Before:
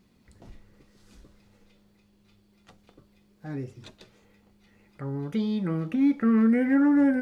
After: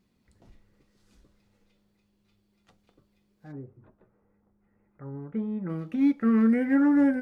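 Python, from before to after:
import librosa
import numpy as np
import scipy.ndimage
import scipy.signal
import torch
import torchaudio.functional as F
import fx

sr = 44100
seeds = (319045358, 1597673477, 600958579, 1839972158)

y = fx.lowpass(x, sr, hz=fx.line((3.51, 1300.0), (5.68, 1900.0)), slope=24, at=(3.51, 5.68), fade=0.02)
y = fx.upward_expand(y, sr, threshold_db=-34.0, expansion=1.5)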